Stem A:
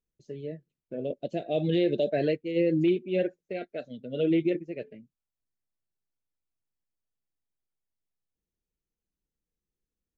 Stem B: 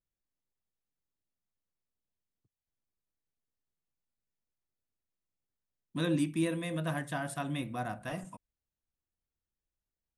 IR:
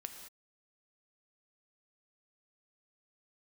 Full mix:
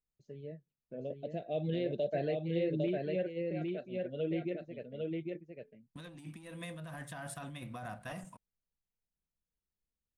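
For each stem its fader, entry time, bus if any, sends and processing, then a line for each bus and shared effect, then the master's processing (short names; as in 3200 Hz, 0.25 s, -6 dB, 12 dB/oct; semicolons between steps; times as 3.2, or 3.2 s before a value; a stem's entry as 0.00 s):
-5.0 dB, 0.00 s, no send, echo send -3 dB, high shelf 2200 Hz -8.5 dB
-9.0 dB, 0.00 s, no send, no echo send, sample leveller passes 1; gate with hold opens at -33 dBFS; negative-ratio compressor -34 dBFS, ratio -1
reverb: off
echo: echo 0.804 s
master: bell 330 Hz -7 dB 0.89 oct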